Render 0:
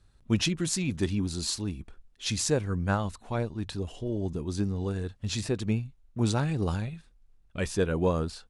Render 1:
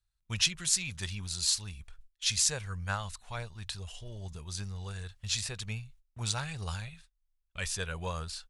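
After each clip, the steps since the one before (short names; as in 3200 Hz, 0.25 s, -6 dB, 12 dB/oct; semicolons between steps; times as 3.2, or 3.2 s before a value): gate -48 dBFS, range -19 dB; passive tone stack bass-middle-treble 10-0-10; gain +4.5 dB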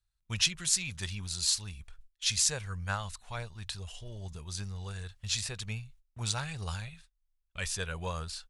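nothing audible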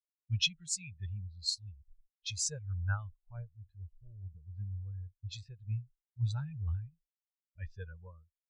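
ending faded out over 0.76 s; low-pass opened by the level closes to 620 Hz, open at -27 dBFS; spectral expander 2.5:1; gain -8.5 dB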